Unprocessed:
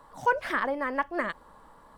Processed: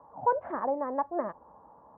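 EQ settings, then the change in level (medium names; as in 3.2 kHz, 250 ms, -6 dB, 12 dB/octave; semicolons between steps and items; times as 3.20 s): high-pass 60 Hz 24 dB/octave; four-pole ladder low-pass 980 Hz, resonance 45%; +6.0 dB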